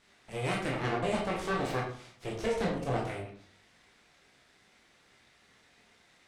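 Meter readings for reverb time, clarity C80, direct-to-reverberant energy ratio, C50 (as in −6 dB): 0.55 s, 9.5 dB, −2.5 dB, 5.0 dB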